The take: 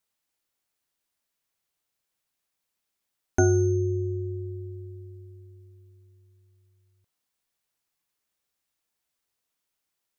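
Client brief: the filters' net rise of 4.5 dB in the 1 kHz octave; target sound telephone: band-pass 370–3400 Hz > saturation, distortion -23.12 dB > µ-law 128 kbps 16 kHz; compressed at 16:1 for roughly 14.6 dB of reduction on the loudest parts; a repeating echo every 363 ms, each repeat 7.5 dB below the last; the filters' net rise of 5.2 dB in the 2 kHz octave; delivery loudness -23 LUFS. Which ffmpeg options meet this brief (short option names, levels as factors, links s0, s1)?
-af "equalizer=f=1000:t=o:g=7,equalizer=f=2000:t=o:g=4,acompressor=threshold=0.0355:ratio=16,highpass=370,lowpass=3400,aecho=1:1:363|726|1089|1452|1815:0.422|0.177|0.0744|0.0312|0.0131,asoftclip=threshold=0.106,volume=8.41" -ar 16000 -c:a pcm_mulaw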